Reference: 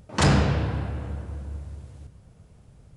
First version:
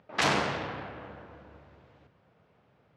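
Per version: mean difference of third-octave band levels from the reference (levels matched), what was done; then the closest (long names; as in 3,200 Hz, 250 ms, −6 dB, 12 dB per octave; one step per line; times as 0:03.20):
5.0 dB: phase distortion by the signal itself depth 0.73 ms
meter weighting curve A
low-pass that shuts in the quiet parts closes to 2,800 Hz, open at −21.5 dBFS
high-frequency loss of the air 82 metres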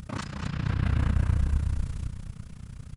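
9.5 dB: flat-topped bell 520 Hz −10.5 dB
compressor whose output falls as the input rises −32 dBFS, ratio −1
amplitude modulation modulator 30 Hz, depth 80%
echo with shifted repeats 232 ms, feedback 37%, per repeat −38 Hz, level −7 dB
level +8 dB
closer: first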